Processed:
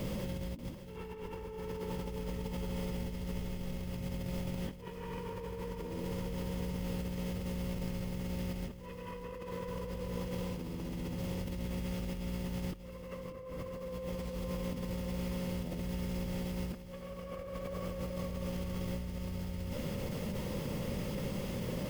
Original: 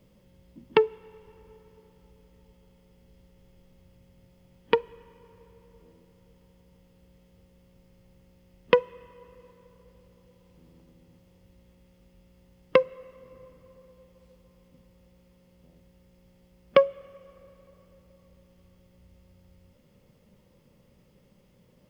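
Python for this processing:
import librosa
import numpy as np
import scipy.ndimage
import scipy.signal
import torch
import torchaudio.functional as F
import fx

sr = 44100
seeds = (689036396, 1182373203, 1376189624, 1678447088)

y = fx.over_compress(x, sr, threshold_db=-60.0, ratio=-1.0)
y = y + 10.0 ** (-11.0 / 20.0) * np.pad(y, (int(588 * sr / 1000.0), 0))[:len(y)]
y = F.gain(torch.from_numpy(y), 10.0).numpy()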